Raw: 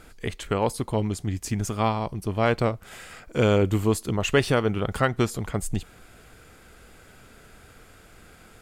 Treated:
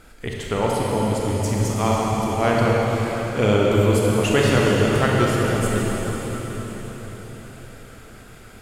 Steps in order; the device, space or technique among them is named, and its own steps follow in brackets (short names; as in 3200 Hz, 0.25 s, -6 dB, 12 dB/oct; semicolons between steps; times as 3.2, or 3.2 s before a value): cathedral (reverb RT60 5.2 s, pre-delay 27 ms, DRR -4 dB)